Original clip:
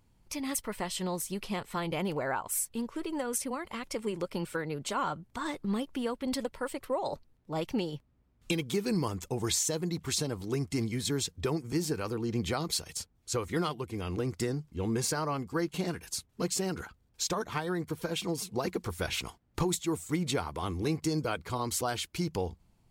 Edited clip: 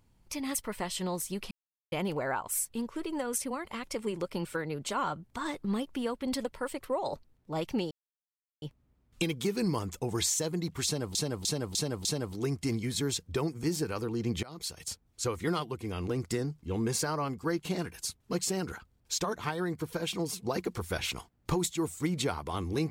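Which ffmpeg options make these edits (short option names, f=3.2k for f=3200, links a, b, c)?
-filter_complex "[0:a]asplit=9[a][b][c][d][e][f][g][h][i];[a]atrim=end=1.51,asetpts=PTS-STARTPTS,afade=t=out:st=1.506:d=0.004:c=hsin[j];[b]atrim=start=1.51:end=1.92,asetpts=PTS-STARTPTS,volume=0[k];[c]atrim=start=1.92:end=7.91,asetpts=PTS-STARTPTS,afade=t=in:d=0.004:c=hsin,afade=t=out:st=5.986:d=0.004:c=hsin,apad=pad_dur=0.71[l];[d]atrim=start=7.91:end=10.442,asetpts=PTS-STARTPTS,afade=t=in:d=0.004:c=hsin[m];[e]atrim=start=10.138:end=10.442[n];[f]atrim=start=10.138:end=10.442[o];[g]atrim=start=10.138:end=10.442[p];[h]atrim=start=10.138:end=12.52,asetpts=PTS-STARTPTS,afade=t=out:st=2.378:d=0.004:c=hsin:silence=0.0841395[q];[i]atrim=start=12.52,asetpts=PTS-STARTPTS,afade=t=in:d=0.49:silence=0.0841395[r];[j][k][l][m]concat=n=4:v=0:a=1[s];[s][n]acrossfade=d=0.004:c1=hsin:c2=hsin[t];[t][o]acrossfade=d=0.004:c1=hsin:c2=hsin[u];[u][p]acrossfade=d=0.004:c1=hsin:c2=hsin[v];[q][r]concat=n=2:v=0:a=1[w];[v][w]acrossfade=d=0.004:c1=hsin:c2=hsin"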